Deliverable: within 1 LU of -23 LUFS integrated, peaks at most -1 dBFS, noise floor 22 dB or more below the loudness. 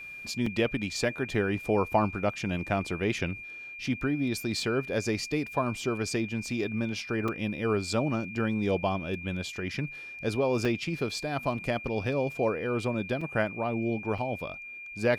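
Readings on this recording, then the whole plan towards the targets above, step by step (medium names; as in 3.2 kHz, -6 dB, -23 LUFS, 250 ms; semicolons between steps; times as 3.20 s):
dropouts 5; longest dropout 3.9 ms; steady tone 2.4 kHz; tone level -40 dBFS; loudness -30.5 LUFS; peak level -11.0 dBFS; loudness target -23.0 LUFS
-> interpolate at 0.46/7.28/10.65/13.21/14.18 s, 3.9 ms; band-stop 2.4 kHz, Q 30; trim +7.5 dB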